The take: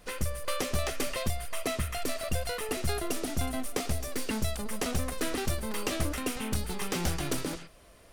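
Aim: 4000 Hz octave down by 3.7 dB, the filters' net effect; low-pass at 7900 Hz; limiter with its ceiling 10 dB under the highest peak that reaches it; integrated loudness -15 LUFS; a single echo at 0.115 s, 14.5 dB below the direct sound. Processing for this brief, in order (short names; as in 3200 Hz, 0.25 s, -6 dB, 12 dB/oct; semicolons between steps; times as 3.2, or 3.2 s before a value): LPF 7900 Hz; bell 4000 Hz -4.5 dB; limiter -28 dBFS; echo 0.115 s -14.5 dB; gain +23.5 dB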